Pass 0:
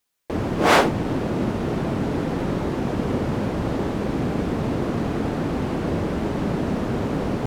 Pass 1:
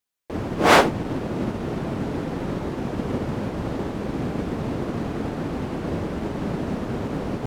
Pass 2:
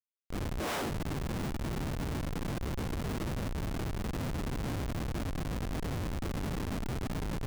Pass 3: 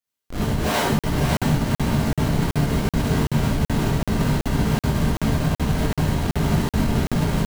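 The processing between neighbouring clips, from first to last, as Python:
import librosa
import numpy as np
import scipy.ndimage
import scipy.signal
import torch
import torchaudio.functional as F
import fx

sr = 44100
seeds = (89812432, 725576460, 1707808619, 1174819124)

y1 = fx.upward_expand(x, sr, threshold_db=-34.0, expansion=1.5)
y1 = y1 * 10.0 ** (2.0 / 20.0)
y2 = fx.schmitt(y1, sr, flips_db=-24.5)
y2 = y2 * 10.0 ** (-8.5 / 20.0)
y3 = y2 + 10.0 ** (-5.0 / 20.0) * np.pad(y2, (int(552 * sr / 1000.0), 0))[:len(y2)]
y3 = fx.rev_gated(y3, sr, seeds[0], gate_ms=90, shape='rising', drr_db=-7.0)
y3 = fx.buffer_crackle(y3, sr, first_s=0.99, period_s=0.38, block=2048, kind='zero')
y3 = y3 * 10.0 ** (4.5 / 20.0)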